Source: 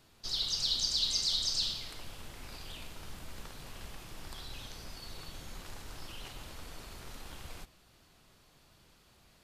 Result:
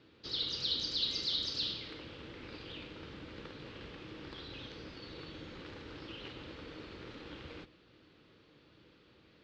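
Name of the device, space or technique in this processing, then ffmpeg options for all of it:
guitar cabinet: -af "highpass=81,equalizer=frequency=310:width_type=q:width=4:gain=10,equalizer=frequency=480:width_type=q:width=4:gain=8,equalizer=frequency=710:width_type=q:width=4:gain=-9,equalizer=frequency=1000:width_type=q:width=4:gain=-4,lowpass=frequency=4000:width=0.5412,lowpass=frequency=4000:width=1.3066,volume=1dB"

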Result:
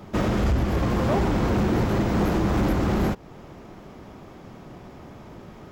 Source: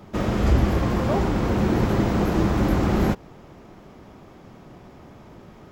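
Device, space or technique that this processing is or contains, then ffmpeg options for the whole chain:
limiter into clipper: -af "alimiter=limit=-14dB:level=0:latency=1:release=285,asoftclip=type=hard:threshold=-19.5dB,volume=2.5dB"

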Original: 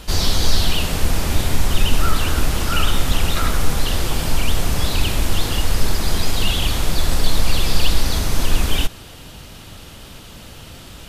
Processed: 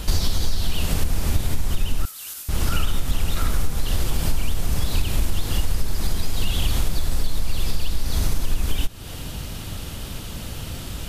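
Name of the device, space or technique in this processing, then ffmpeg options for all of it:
ASMR close-microphone chain: -filter_complex "[0:a]lowshelf=frequency=230:gain=7.5,acompressor=threshold=-17dB:ratio=6,highshelf=frequency=7200:gain=6.5,asettb=1/sr,asplit=3[link_01][link_02][link_03];[link_01]atrim=end=2.054[link_04];[link_02]atrim=start=2.05:end=2.49,asetpts=PTS-STARTPTS,afade=type=in:duration=0.004:curve=qsin,afade=type=out:start_time=0.436:duration=0.004:curve=qsin,aderivative[link_05];[link_03]atrim=start=2.486[link_06];[link_04][link_05]acrossfade=duration=0.004:curve1=hsin:curve2=qsin[link_07];[link_07][link_06]acrossfade=duration=0.004:curve1=qsin:curve2=hsin,volume=1.5dB"

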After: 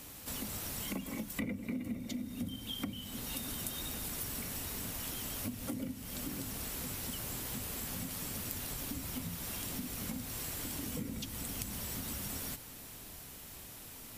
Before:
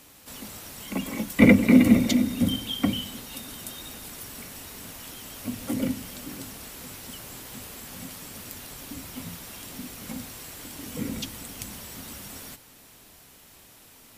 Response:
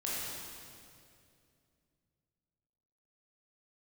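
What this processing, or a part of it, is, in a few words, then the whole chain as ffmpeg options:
ASMR close-microphone chain: -af "lowshelf=frequency=190:gain=7,acompressor=threshold=-37dB:ratio=8,highshelf=frequency=9100:gain=5"

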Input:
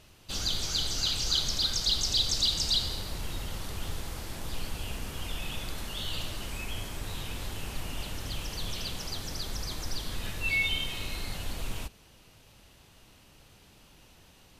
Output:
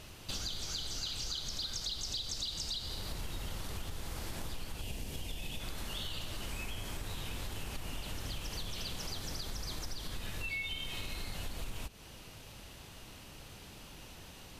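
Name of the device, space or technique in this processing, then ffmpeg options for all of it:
serial compression, peaks first: -filter_complex "[0:a]asettb=1/sr,asplit=3[link_01][link_02][link_03];[link_01]atrim=end=4.814[link_04];[link_02]atrim=start=4.81:end=5.6,asetpts=PTS-STARTPTS,afade=type=in:duration=0.004:curve=qsin,afade=type=out:start_time=0.786:duration=0.004:curve=qsin,equalizer=frequency=1300:width=1.6:gain=-11.5[link_05];[link_03]atrim=start=5.596[link_06];[link_04][link_05]acrossfade=duration=0.004:curve1=hsin:curve2=qsin[link_07];[link_07][link_06]acrossfade=duration=0.004:curve1=qsin:curve2=hsin,acompressor=threshold=-37dB:ratio=6,acompressor=threshold=-50dB:ratio=1.5,volume=6dB"

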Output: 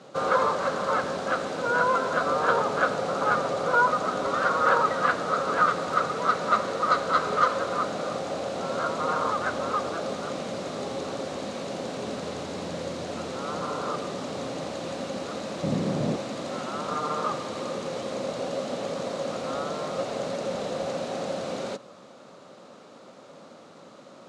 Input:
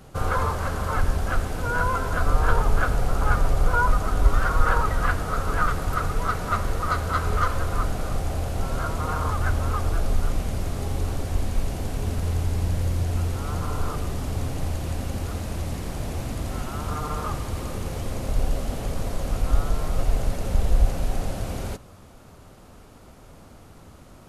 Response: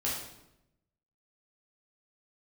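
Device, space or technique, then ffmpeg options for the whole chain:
television speaker: -filter_complex "[0:a]asettb=1/sr,asplit=3[link_01][link_02][link_03];[link_01]atrim=end=15.634[link_04];[link_02]atrim=start=15.63:end=16.16,asetpts=PTS-STARTPTS,afade=type=in:duration=0.004:curve=qsin,afade=type=out:start_time=0.526:duration=0.004:curve=qsin,equalizer=frequency=130:width=0.48:gain=15[link_05];[link_03]atrim=start=16.156[link_06];[link_04][link_05]acrossfade=duration=0.004:curve1=hsin:curve2=qsin[link_07];[link_07][link_06]acrossfade=duration=0.004:curve1=qsin:curve2=hsin,highpass=frequency=180:width=0.5412,highpass=frequency=180:width=1.3066,equalizer=frequency=550:width_type=q:width=4:gain=9,equalizer=frequency=1200:width_type=q:width=4:gain=4,equalizer=frequency=3900:width_type=q:width=4:gain=6,lowpass=frequency=7500:width=0.5412,lowpass=frequency=7500:width=1.3066"

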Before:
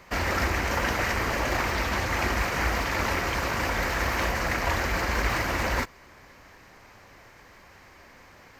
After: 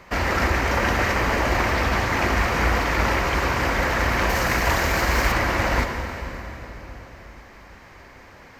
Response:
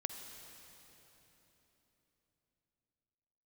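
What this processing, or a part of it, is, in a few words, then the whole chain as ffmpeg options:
swimming-pool hall: -filter_complex "[1:a]atrim=start_sample=2205[link_01];[0:a][link_01]afir=irnorm=-1:irlink=0,highshelf=frequency=4400:gain=-6,asettb=1/sr,asplit=3[link_02][link_03][link_04];[link_02]atrim=end=4.294[link_05];[link_03]atrim=start=4.29:end=5.32,asetpts=PTS-STARTPTS,afade=type=in:duration=0.004:curve=qsin,afade=type=out:start_time=1.026:duration=0.004:curve=qsin,aemphasis=mode=production:type=cd[link_06];[link_04]atrim=start=5.316[link_07];[link_05][link_06]acrossfade=duration=0.004:curve1=hsin:curve2=qsin[link_08];[link_08][link_07]acrossfade=duration=0.004:curve1=qsin:curve2=hsin,volume=6dB"

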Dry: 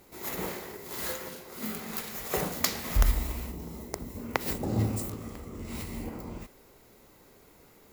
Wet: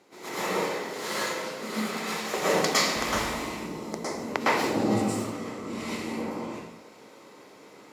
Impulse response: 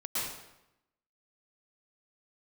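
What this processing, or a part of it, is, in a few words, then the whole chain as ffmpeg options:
supermarket ceiling speaker: -filter_complex "[0:a]highpass=240,lowpass=6600[link_01];[1:a]atrim=start_sample=2205[link_02];[link_01][link_02]afir=irnorm=-1:irlink=0,volume=4dB"

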